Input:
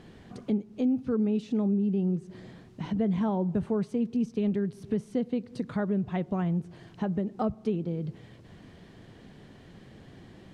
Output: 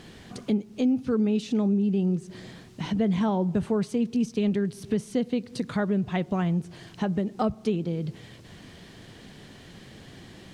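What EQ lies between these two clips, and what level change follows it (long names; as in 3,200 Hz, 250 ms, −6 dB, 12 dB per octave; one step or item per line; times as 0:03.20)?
high-shelf EQ 2,200 Hz +11 dB
+2.5 dB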